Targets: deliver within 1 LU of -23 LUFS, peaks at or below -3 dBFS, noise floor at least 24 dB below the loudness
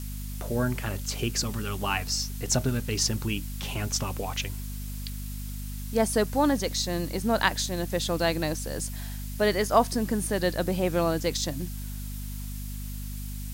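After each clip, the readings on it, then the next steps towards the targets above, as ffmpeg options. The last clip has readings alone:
hum 50 Hz; harmonics up to 250 Hz; hum level -33 dBFS; noise floor -35 dBFS; noise floor target -53 dBFS; loudness -28.5 LUFS; peak -7.0 dBFS; loudness target -23.0 LUFS
-> -af "bandreject=f=50:t=h:w=4,bandreject=f=100:t=h:w=4,bandreject=f=150:t=h:w=4,bandreject=f=200:t=h:w=4,bandreject=f=250:t=h:w=4"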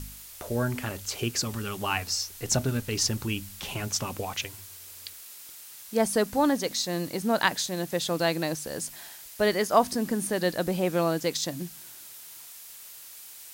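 hum none; noise floor -46 dBFS; noise floor target -52 dBFS
-> -af "afftdn=nr=6:nf=-46"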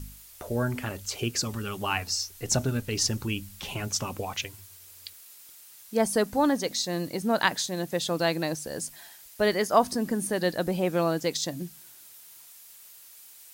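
noise floor -51 dBFS; noise floor target -52 dBFS
-> -af "afftdn=nr=6:nf=-51"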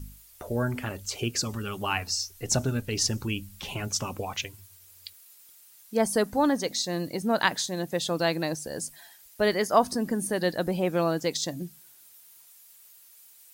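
noise floor -54 dBFS; loudness -28.0 LUFS; peak -7.0 dBFS; loudness target -23.0 LUFS
-> -af "volume=5dB,alimiter=limit=-3dB:level=0:latency=1"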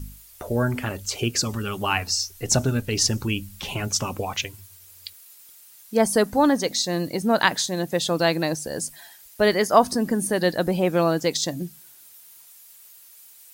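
loudness -23.0 LUFS; peak -3.0 dBFS; noise floor -49 dBFS

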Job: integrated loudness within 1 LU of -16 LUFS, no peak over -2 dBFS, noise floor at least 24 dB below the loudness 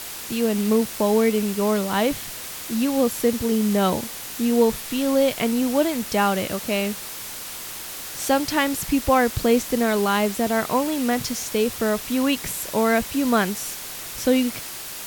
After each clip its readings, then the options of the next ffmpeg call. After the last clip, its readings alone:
noise floor -35 dBFS; noise floor target -47 dBFS; loudness -22.5 LUFS; peak -6.0 dBFS; loudness target -16.0 LUFS
-> -af "afftdn=nr=12:nf=-35"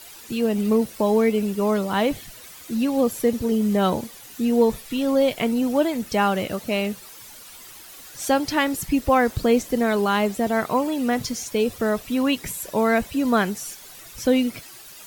noise floor -43 dBFS; noise floor target -47 dBFS
-> -af "afftdn=nr=6:nf=-43"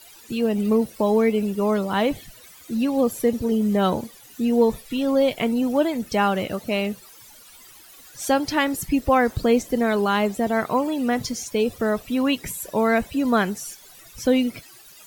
noise floor -47 dBFS; loudness -22.5 LUFS; peak -6.5 dBFS; loudness target -16.0 LUFS
-> -af "volume=6.5dB,alimiter=limit=-2dB:level=0:latency=1"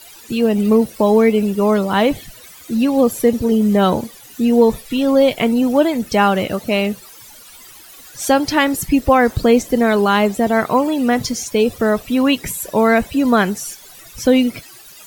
loudness -16.0 LUFS; peak -2.0 dBFS; noise floor -41 dBFS

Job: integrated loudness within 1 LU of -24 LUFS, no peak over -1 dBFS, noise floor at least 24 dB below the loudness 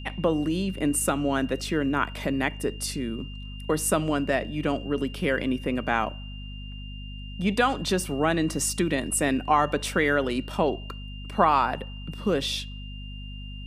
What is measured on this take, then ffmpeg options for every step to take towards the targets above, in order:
hum 50 Hz; harmonics up to 250 Hz; hum level -35 dBFS; steady tone 2800 Hz; tone level -44 dBFS; loudness -26.0 LUFS; peak -6.0 dBFS; loudness target -24.0 LUFS
-> -af "bandreject=f=50:t=h:w=6,bandreject=f=100:t=h:w=6,bandreject=f=150:t=h:w=6,bandreject=f=200:t=h:w=6,bandreject=f=250:t=h:w=6"
-af "bandreject=f=2.8k:w=30"
-af "volume=2dB"

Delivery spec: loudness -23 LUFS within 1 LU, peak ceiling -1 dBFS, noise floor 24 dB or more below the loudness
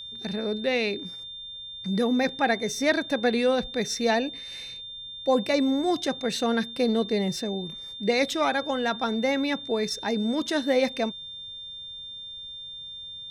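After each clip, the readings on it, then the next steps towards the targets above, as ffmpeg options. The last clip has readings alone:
steady tone 3600 Hz; tone level -37 dBFS; loudness -27.0 LUFS; peak -9.5 dBFS; loudness target -23.0 LUFS
-> -af "bandreject=f=3.6k:w=30"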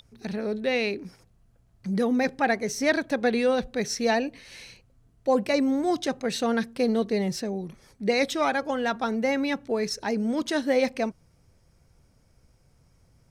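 steady tone none; loudness -26.5 LUFS; peak -10.0 dBFS; loudness target -23.0 LUFS
-> -af "volume=3.5dB"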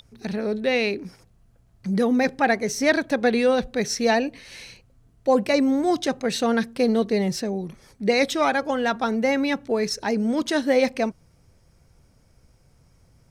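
loudness -23.0 LUFS; peak -6.5 dBFS; noise floor -59 dBFS

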